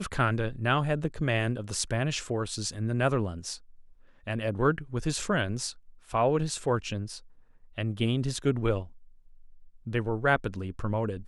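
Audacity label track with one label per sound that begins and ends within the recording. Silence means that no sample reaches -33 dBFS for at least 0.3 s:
4.270000	5.700000	sound
6.140000	7.170000	sound
7.780000	8.820000	sound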